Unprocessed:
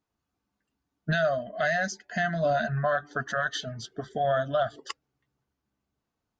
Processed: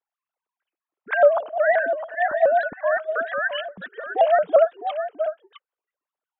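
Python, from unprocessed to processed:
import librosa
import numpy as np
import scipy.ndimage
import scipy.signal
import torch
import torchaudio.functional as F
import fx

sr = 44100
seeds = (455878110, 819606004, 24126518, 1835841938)

y = fx.sine_speech(x, sr)
y = y + 10.0 ** (-9.5 / 20.0) * np.pad(y, (int(657 * sr / 1000.0), 0))[:len(y)]
y = fx.vibrato_shape(y, sr, shape='saw_up', rate_hz=5.7, depth_cents=160.0)
y = y * librosa.db_to_amplitude(7.0)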